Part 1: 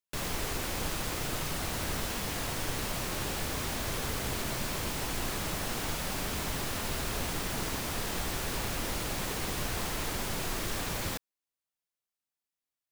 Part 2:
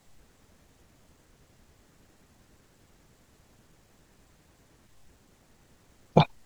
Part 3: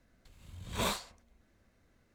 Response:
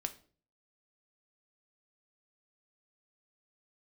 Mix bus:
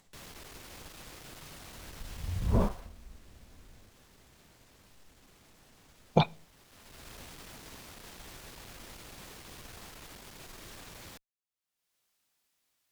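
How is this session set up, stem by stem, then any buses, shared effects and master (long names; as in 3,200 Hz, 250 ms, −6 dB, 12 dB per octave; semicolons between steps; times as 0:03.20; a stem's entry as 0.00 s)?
−14.0 dB, 0.00 s, no send, asymmetric clip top −35 dBFS; automatic ducking −15 dB, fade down 0.25 s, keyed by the second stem
0:02.42 −19 dB → 0:03.03 −6.5 dB, 0.00 s, send −11 dB, no processing
+2.5 dB, 1.75 s, no send, spectral tilt −3 dB per octave; treble cut that deepens with the level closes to 870 Hz, closed at −27.5 dBFS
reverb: on, RT60 0.45 s, pre-delay 4 ms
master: parametric band 3,900 Hz +2.5 dB 2.1 octaves; upward compression, threshold −56 dBFS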